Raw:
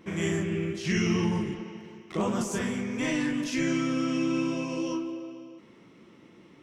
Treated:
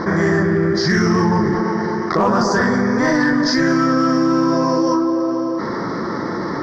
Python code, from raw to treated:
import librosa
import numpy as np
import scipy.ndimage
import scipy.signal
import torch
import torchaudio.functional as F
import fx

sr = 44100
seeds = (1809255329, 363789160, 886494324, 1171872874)

p1 = fx.curve_eq(x, sr, hz=(270.0, 1100.0, 1800.0, 2700.0, 4800.0, 8500.0), db=(0, 9, 8, -29, 10, -27))
p2 = 10.0 ** (-20.5 / 20.0) * (np.abs((p1 / 10.0 ** (-20.5 / 20.0) + 3.0) % 4.0 - 2.0) - 1.0)
p3 = p1 + (p2 * 10.0 ** (-12.0 / 20.0))
p4 = fx.env_flatten(p3, sr, amount_pct=70)
y = p4 * 10.0 ** (6.5 / 20.0)